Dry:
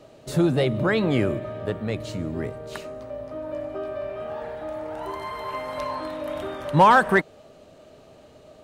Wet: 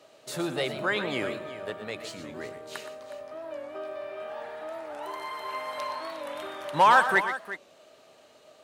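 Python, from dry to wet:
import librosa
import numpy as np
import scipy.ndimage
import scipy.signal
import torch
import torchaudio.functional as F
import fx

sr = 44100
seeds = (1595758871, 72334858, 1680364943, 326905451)

p1 = fx.highpass(x, sr, hz=1100.0, slope=6)
p2 = p1 + fx.echo_multitap(p1, sr, ms=(106, 120, 365), db=(-19.0, -11.0, -13.5), dry=0)
y = fx.record_warp(p2, sr, rpm=45.0, depth_cents=100.0)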